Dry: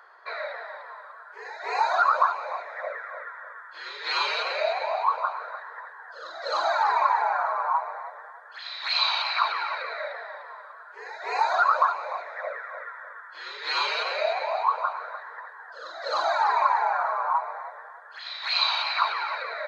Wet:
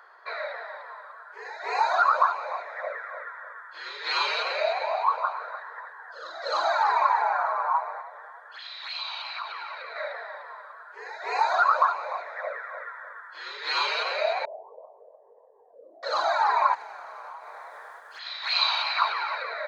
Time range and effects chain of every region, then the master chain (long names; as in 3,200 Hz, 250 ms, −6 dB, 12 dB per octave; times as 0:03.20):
0:08.01–0:09.96: parametric band 3,100 Hz +9 dB 0.25 octaves + notch filter 3,100 Hz, Q 19 + downward compressor 2 to 1, threshold −40 dBFS
0:14.45–0:16.03: inverse Chebyshev low-pass filter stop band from 1,300 Hz, stop band 50 dB + upward compression, threshold −48 dBFS
0:16.73–0:18.18: compressing power law on the bin magnitudes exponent 0.67 + downward compressor 8 to 1, threshold −38 dBFS
whole clip: no processing